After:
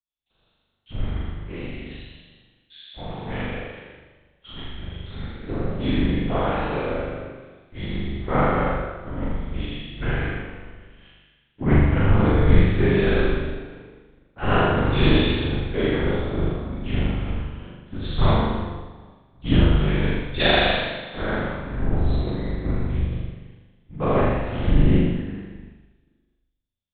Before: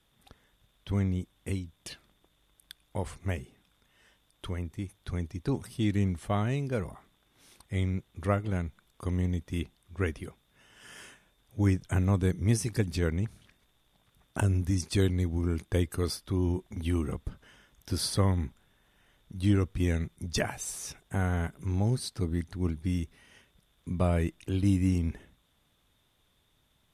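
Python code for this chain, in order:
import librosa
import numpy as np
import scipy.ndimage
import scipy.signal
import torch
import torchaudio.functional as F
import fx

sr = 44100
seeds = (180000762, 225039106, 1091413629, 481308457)

y = fx.spec_trails(x, sr, decay_s=2.79)
y = fx.lpc_vocoder(y, sr, seeds[0], excitation='whisper', order=8)
y = fx.room_flutter(y, sr, wall_m=7.0, rt60_s=1.3)
y = fx.band_widen(y, sr, depth_pct=100)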